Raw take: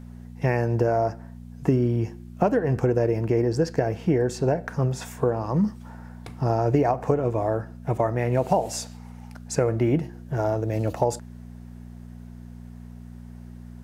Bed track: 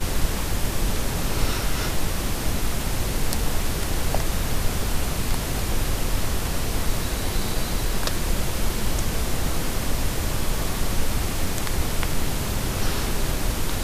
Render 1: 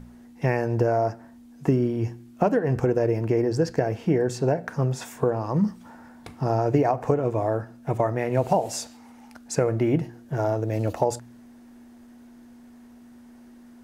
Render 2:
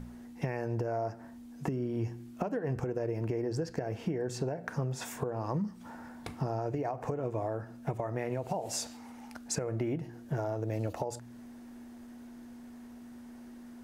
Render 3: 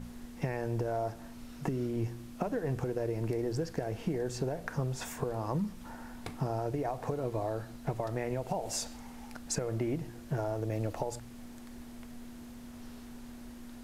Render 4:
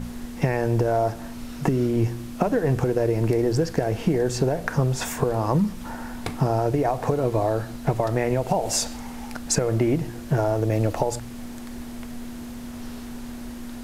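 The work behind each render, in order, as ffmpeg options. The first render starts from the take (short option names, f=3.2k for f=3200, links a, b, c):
-af "bandreject=f=60:t=h:w=4,bandreject=f=120:t=h:w=4,bandreject=f=180:t=h:w=4"
-af "alimiter=limit=-15.5dB:level=0:latency=1:release=377,acompressor=threshold=-30dB:ratio=6"
-filter_complex "[1:a]volume=-28.5dB[a];[0:a][a]amix=inputs=2:normalize=0"
-af "volume=11.5dB"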